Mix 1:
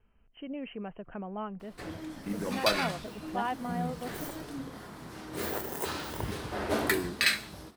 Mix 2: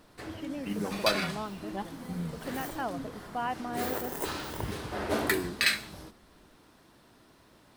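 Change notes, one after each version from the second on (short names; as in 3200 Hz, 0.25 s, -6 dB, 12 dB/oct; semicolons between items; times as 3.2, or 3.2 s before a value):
background: entry -1.60 s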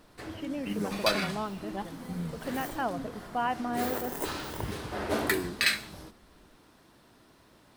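reverb: on, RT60 2.1 s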